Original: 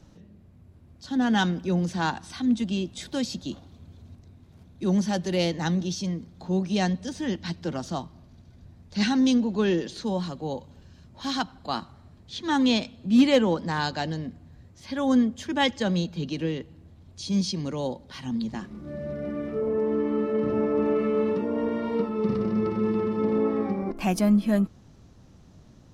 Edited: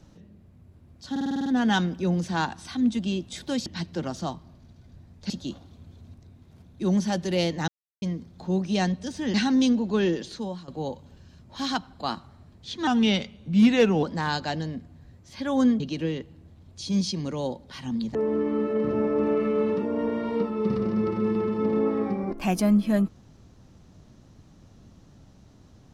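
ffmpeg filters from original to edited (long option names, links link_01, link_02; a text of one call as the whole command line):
ffmpeg -i in.wav -filter_complex "[0:a]asplit=18[link_01][link_02][link_03][link_04][link_05][link_06][link_07][link_08][link_09][link_10][link_11][link_12][link_13][link_14][link_15][link_16][link_17][link_18];[link_01]atrim=end=1.162[link_19];[link_02]atrim=start=1.108:end=1.162[link_20];[link_03]atrim=start=1.108:end=1.162[link_21];[link_04]atrim=start=1.108:end=1.162[link_22];[link_05]atrim=start=1.108:end=1.162[link_23];[link_06]atrim=start=1.108:end=1.162[link_24];[link_07]atrim=start=1.108:end=1.162[link_25];[link_08]atrim=start=1.108:end=3.312[link_26];[link_09]atrim=start=7.348:end=8.992[link_27];[link_10]atrim=start=3.308:end=5.69,asetpts=PTS-STARTPTS,afade=type=out:start_time=2.378:duration=0.004:curve=hsin[link_28];[link_11]atrim=start=5.69:end=6.03,asetpts=PTS-STARTPTS,volume=0[link_29];[link_12]atrim=start=6.03:end=7.352,asetpts=PTS-STARTPTS,afade=type=in:duration=0.004:curve=hsin[link_30];[link_13]atrim=start=8.988:end=10.33,asetpts=PTS-STARTPTS,afade=type=out:start_time=0.902:duration=0.44:silence=0.16788[link_31];[link_14]atrim=start=10.33:end=12.524,asetpts=PTS-STARTPTS,afade=type=in:duration=0.004:curve=hsin:silence=0.16788[link_32];[link_15]atrim=start=12.52:end=13.54,asetpts=PTS-STARTPTS,asetrate=38808,aresample=44100[link_33];[link_16]atrim=start=13.536:end=15.312[link_34];[link_17]atrim=start=16.198:end=18.552[link_35];[link_18]atrim=start=19.738[link_36];[link_19][link_20]acrossfade=duration=0.004:curve1=hsin:curve2=hsin[link_37];[link_37][link_21]acrossfade=duration=0.004:curve1=hsin:curve2=hsin[link_38];[link_38][link_22]acrossfade=duration=0.004:curve1=hsin:curve2=hsin[link_39];[link_39][link_23]acrossfade=duration=0.004:curve1=hsin:curve2=hsin[link_40];[link_40][link_24]acrossfade=duration=0.004:curve1=hsin:curve2=hsin[link_41];[link_41][link_25]acrossfade=duration=0.004:curve1=hsin:curve2=hsin[link_42];[link_42][link_26]acrossfade=duration=0.004:curve1=hsin:curve2=hsin[link_43];[link_43][link_27]acrossfade=duration=0.004:curve1=hsin:curve2=hsin[link_44];[link_28][link_29][link_30]concat=n=3:v=0:a=1[link_45];[link_44][link_45]acrossfade=duration=0.004:curve1=hsin:curve2=hsin[link_46];[link_31][link_32]concat=n=2:v=0:a=1[link_47];[link_46][link_47]acrossfade=duration=0.004:curve1=hsin:curve2=hsin[link_48];[link_48][link_33]acrossfade=duration=0.004:curve1=hsin:curve2=hsin[link_49];[link_49][link_34]acrossfade=duration=0.004:curve1=hsin:curve2=hsin[link_50];[link_50][link_35]acrossfade=duration=0.004:curve1=hsin:curve2=hsin[link_51];[link_51][link_36]acrossfade=duration=0.004:curve1=hsin:curve2=hsin" out.wav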